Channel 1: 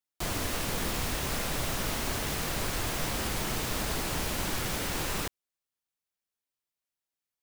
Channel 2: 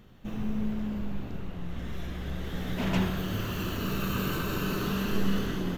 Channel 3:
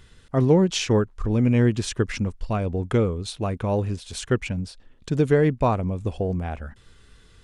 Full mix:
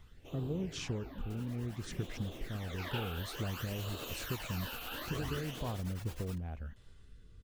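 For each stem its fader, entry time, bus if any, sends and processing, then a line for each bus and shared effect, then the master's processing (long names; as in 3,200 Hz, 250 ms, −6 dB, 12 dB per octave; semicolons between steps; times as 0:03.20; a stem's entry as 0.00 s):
0:03.18 −22.5 dB → 0:03.67 −14 dB, 1.10 s, no send, no echo send, reverb reduction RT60 0.75 s; tremolo along a rectified sine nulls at 9.6 Hz
−3.5 dB, 0.00 s, no send, echo send −20 dB, gate on every frequency bin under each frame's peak −15 dB weak; all-pass phaser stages 12, 0.57 Hz, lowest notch 100–2,000 Hz
−11.0 dB, 0.00 s, no send, no echo send, low-shelf EQ 260 Hz +9.5 dB; downward compressor, threshold −23 dBFS, peak gain reduction 14.5 dB; rotating-speaker cabinet horn 0.85 Hz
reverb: not used
echo: repeating echo 584 ms, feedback 30%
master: no processing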